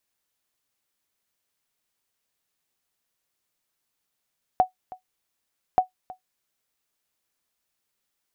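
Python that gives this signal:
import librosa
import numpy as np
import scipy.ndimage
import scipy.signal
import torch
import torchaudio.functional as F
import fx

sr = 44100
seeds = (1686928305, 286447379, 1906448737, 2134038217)

y = fx.sonar_ping(sr, hz=742.0, decay_s=0.12, every_s=1.18, pings=2, echo_s=0.32, echo_db=-20.5, level_db=-9.0)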